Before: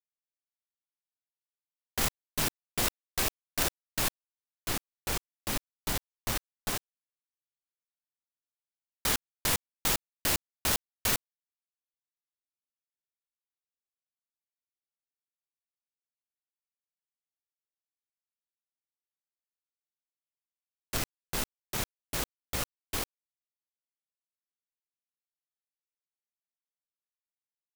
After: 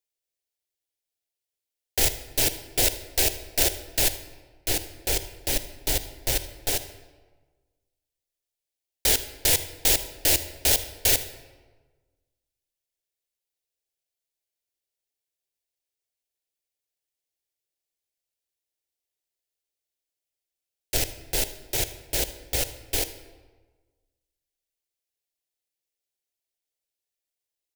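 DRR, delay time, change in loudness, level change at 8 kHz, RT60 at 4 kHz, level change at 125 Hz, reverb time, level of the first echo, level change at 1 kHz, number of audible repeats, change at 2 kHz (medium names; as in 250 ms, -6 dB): 11.5 dB, 78 ms, +8.0 dB, +8.5 dB, 0.85 s, +5.0 dB, 1.4 s, -19.5 dB, +0.5 dB, 1, +4.0 dB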